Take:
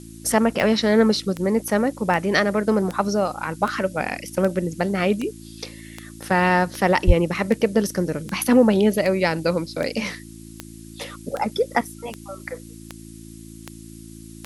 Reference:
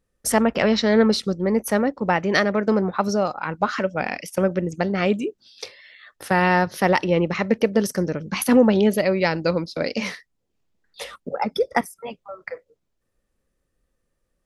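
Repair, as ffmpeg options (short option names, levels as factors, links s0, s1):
-filter_complex "[0:a]adeclick=t=4,bandreject=f=55.4:t=h:w=4,bandreject=f=110.8:t=h:w=4,bandreject=f=166.2:t=h:w=4,bandreject=f=221.6:t=h:w=4,bandreject=f=277:t=h:w=4,bandreject=f=332.4:t=h:w=4,asplit=3[s0][s1][s2];[s0]afade=t=out:st=7.06:d=0.02[s3];[s1]highpass=f=140:w=0.5412,highpass=f=140:w=1.3066,afade=t=in:st=7.06:d=0.02,afade=t=out:st=7.18:d=0.02[s4];[s2]afade=t=in:st=7.18:d=0.02[s5];[s3][s4][s5]amix=inputs=3:normalize=0,afftdn=nr=30:nf=-41"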